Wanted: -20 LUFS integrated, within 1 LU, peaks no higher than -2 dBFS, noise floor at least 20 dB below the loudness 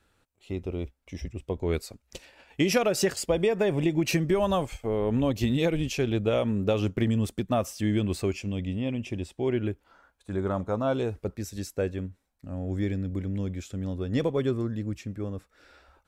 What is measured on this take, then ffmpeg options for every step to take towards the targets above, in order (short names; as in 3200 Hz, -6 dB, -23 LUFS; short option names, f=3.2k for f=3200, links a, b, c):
loudness -28.5 LUFS; peak -11.0 dBFS; loudness target -20.0 LUFS
-> -af "volume=8.5dB"